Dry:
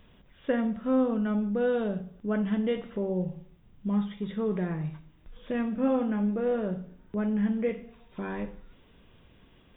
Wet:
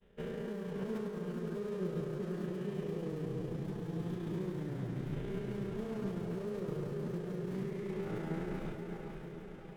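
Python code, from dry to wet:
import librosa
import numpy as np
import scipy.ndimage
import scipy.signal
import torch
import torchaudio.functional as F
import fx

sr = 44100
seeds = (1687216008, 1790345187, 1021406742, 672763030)

p1 = fx.spec_blur(x, sr, span_ms=452.0)
p2 = fx.sample_hold(p1, sr, seeds[0], rate_hz=1700.0, jitter_pct=20)
p3 = p1 + F.gain(torch.from_numpy(p2), -11.5).numpy()
p4 = fx.level_steps(p3, sr, step_db=24)
p5 = p4 + fx.echo_diffused(p4, sr, ms=536, feedback_pct=60, wet_db=-5, dry=0)
p6 = fx.granulator(p5, sr, seeds[1], grain_ms=71.0, per_s=29.0, spray_ms=13.0, spread_st=0)
p7 = fx.pitch_keep_formants(p6, sr, semitones=-3.0)
y = F.gain(torch.from_numpy(p7), 10.0).numpy()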